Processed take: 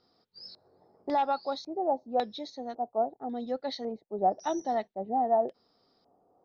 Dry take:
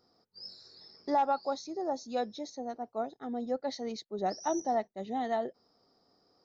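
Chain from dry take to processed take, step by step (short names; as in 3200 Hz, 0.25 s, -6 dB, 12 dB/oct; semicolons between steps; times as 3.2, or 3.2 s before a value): LFO low-pass square 0.91 Hz 770–3700 Hz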